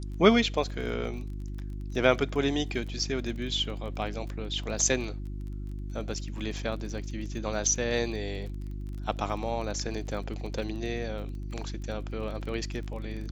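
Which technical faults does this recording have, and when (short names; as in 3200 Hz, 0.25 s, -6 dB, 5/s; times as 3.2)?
crackle 22/s -38 dBFS
hum 50 Hz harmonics 7 -36 dBFS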